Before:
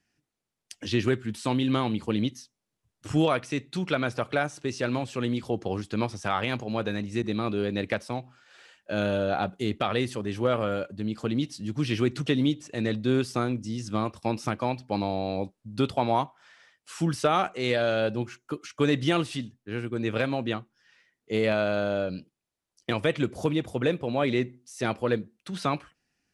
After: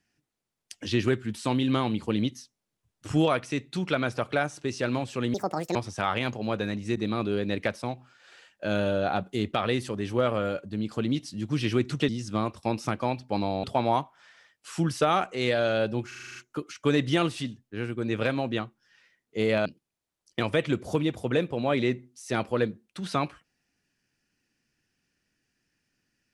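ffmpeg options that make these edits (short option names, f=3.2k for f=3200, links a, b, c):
-filter_complex "[0:a]asplit=13[a][b][c][d][e][f][g][h][i][j][k][l][m];[a]atrim=end=5.344[n];[b]atrim=start=5.34:end=6.02,asetpts=PTS-STARTPTS,asetrate=72324,aresample=44100,atrim=end_sample=18285,asetpts=PTS-STARTPTS[o];[c]atrim=start=6.016:end=12.352[p];[d]atrim=start=13.678:end=15.232[q];[e]atrim=start=15.858:end=18.342[r];[f]atrim=start=18.298:end=18.342[s];[g]atrim=start=18.298:end=18.342[t];[h]atrim=start=18.298:end=18.342[u];[i]atrim=start=18.298:end=18.342[v];[j]atrim=start=18.298:end=18.342[w];[k]atrim=start=18.298:end=18.342[x];[l]atrim=start=18.298:end=21.602[y];[m]atrim=start=22.158[z];[n][o]acrossfade=d=0.004:c1=hsin:c2=hsin[aa];[aa][p]acrossfade=d=0.004:c1=hsin:c2=hsin[ab];[ab][q]acrossfade=d=0.004:c1=hsin:c2=hsin[ac];[ac][r]acrossfade=d=0.004:c1=hsin:c2=hsin[ad];[ad][s]acrossfade=d=0.004:c1=hsin:c2=hsin[ae];[ae][t]acrossfade=d=0.004:c1=hsin:c2=hsin[af];[af][u]acrossfade=d=0.004:c1=hsin:c2=hsin[ag];[ag][v]acrossfade=d=0.004:c1=hsin:c2=hsin[ah];[ah][w]acrossfade=d=0.004:c1=hsin:c2=hsin[ai];[ai][x]acrossfade=d=0.004:c1=hsin:c2=hsin[aj];[aj][y]acrossfade=d=0.004:c1=hsin:c2=hsin[ak];[ak][z]acrossfade=d=0.004:c1=hsin:c2=hsin"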